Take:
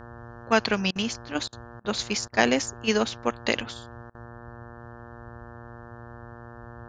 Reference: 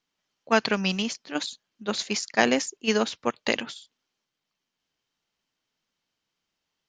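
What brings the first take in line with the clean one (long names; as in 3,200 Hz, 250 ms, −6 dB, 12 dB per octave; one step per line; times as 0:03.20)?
hum removal 118.2 Hz, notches 15
repair the gap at 0:00.91/0:01.48/0:01.80/0:02.28/0:04.10, 45 ms
noise reduction from a noise print 30 dB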